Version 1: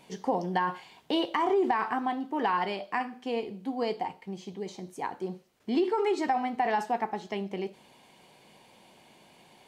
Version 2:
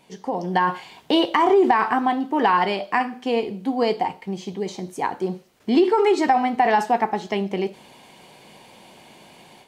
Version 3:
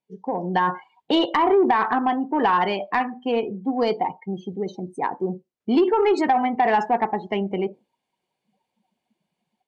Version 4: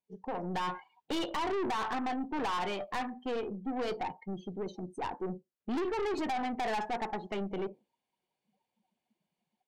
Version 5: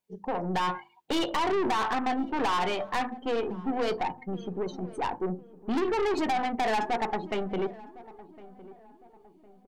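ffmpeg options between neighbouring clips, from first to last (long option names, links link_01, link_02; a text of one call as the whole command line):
ffmpeg -i in.wav -af "dynaudnorm=framelen=320:gausssize=3:maxgain=9.5dB" out.wav
ffmpeg -i in.wav -af "afftdn=noise_reduction=33:noise_floor=-33,asoftclip=type=tanh:threshold=-9.5dB" out.wav
ffmpeg -i in.wav -af "aeval=exprs='(tanh(15.8*val(0)+0.3)-tanh(0.3))/15.8':channel_layout=same,volume=-6.5dB" out.wav
ffmpeg -i in.wav -filter_complex "[0:a]bandreject=frequency=50:width_type=h:width=6,bandreject=frequency=100:width_type=h:width=6,bandreject=frequency=150:width_type=h:width=6,bandreject=frequency=200:width_type=h:width=6,bandreject=frequency=250:width_type=h:width=6,bandreject=frequency=300:width_type=h:width=6,bandreject=frequency=350:width_type=h:width=6,asplit=2[link_01][link_02];[link_02]adelay=1058,lowpass=frequency=1000:poles=1,volume=-18dB,asplit=2[link_03][link_04];[link_04]adelay=1058,lowpass=frequency=1000:poles=1,volume=0.47,asplit=2[link_05][link_06];[link_06]adelay=1058,lowpass=frequency=1000:poles=1,volume=0.47,asplit=2[link_07][link_08];[link_08]adelay=1058,lowpass=frequency=1000:poles=1,volume=0.47[link_09];[link_01][link_03][link_05][link_07][link_09]amix=inputs=5:normalize=0,volume=6dB" out.wav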